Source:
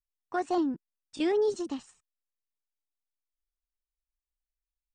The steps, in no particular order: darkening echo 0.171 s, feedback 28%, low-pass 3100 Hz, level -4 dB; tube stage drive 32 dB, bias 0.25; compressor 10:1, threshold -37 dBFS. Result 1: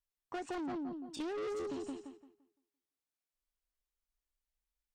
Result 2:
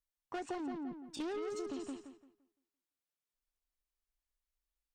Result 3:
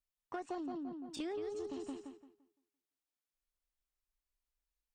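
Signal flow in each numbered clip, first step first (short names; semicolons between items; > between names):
darkening echo > tube stage > compressor; tube stage > darkening echo > compressor; darkening echo > compressor > tube stage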